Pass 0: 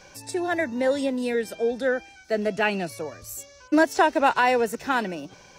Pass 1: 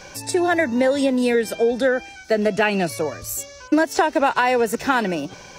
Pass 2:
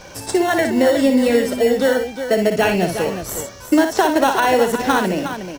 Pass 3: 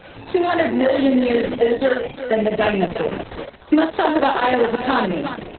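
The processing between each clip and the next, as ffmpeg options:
-af "acompressor=threshold=-23dB:ratio=10,volume=9dB"
-filter_complex "[0:a]asplit=2[a][b];[b]acrusher=samples=18:mix=1:aa=0.000001,volume=-5dB[c];[a][c]amix=inputs=2:normalize=0,aecho=1:1:59|362:0.447|0.335,volume=-1dB"
-af "aresample=11025,aresample=44100,volume=-1dB" -ar 48000 -c:a libopus -b:a 6k

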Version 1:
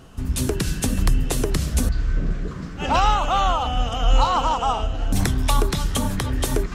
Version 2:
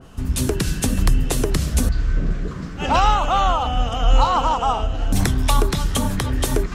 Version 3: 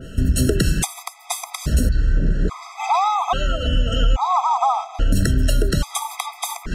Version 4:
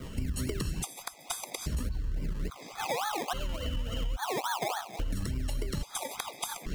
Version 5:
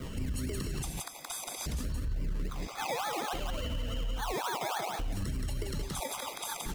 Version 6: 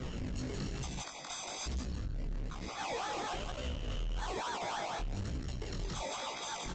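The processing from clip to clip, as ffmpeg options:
-af "adynamicequalizer=threshold=0.0224:dfrequency=2200:dqfactor=0.7:tfrequency=2200:tqfactor=0.7:attack=5:release=100:ratio=0.375:range=1.5:mode=cutabove:tftype=highshelf,volume=2dB"
-af "acompressor=threshold=-22dB:ratio=6,afftfilt=real='re*gt(sin(2*PI*0.6*pts/sr)*(1-2*mod(floor(b*sr/1024/650),2)),0)':imag='im*gt(sin(2*PI*0.6*pts/sr)*(1-2*mod(floor(b*sr/1024/650),2)),0)':win_size=1024:overlap=0.75,volume=9dB"
-filter_complex "[0:a]acrossover=split=140|1900[a][b][c];[b]acrusher=samples=24:mix=1:aa=0.000001:lfo=1:lforange=14.4:lforate=3.5[d];[a][d][c]amix=inputs=3:normalize=0,acompressor=threshold=-27dB:ratio=3,volume=-5.5dB"
-af "aecho=1:1:173:0.531,alimiter=level_in=4.5dB:limit=-24dB:level=0:latency=1:release=28,volume=-4.5dB,volume=1.5dB"
-af "aresample=16000,asoftclip=type=tanh:threshold=-38.5dB,aresample=44100,flanger=delay=15.5:depth=7.2:speed=1.1,volume=6dB"

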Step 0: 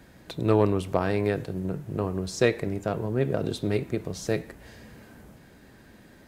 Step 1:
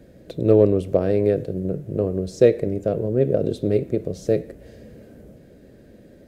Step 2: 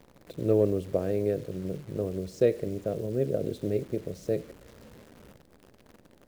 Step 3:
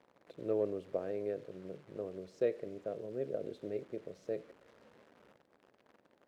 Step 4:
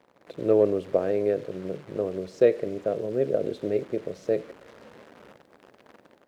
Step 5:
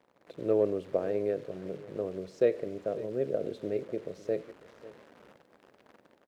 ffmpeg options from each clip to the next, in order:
-af "lowshelf=f=710:t=q:w=3:g=8.5,volume=-5dB"
-af "acrusher=bits=8:dc=4:mix=0:aa=0.000001,volume=-8.5dB"
-af "bandpass=f=1.1k:t=q:w=0.5:csg=0,volume=-6dB"
-af "dynaudnorm=f=170:g=3:m=7.5dB,volume=5.5dB"
-af "aecho=1:1:546:0.126,volume=-6dB"

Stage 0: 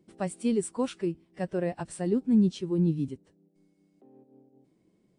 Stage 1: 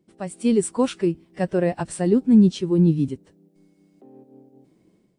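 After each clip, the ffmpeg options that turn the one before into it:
-af "dynaudnorm=f=260:g=3:m=10dB,volume=-1.5dB"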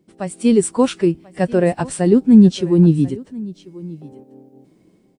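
-af "aecho=1:1:1039:0.1,volume=5.5dB"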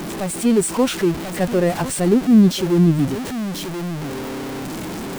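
-af "aeval=exprs='val(0)+0.5*0.119*sgn(val(0))':c=same,volume=-4dB"

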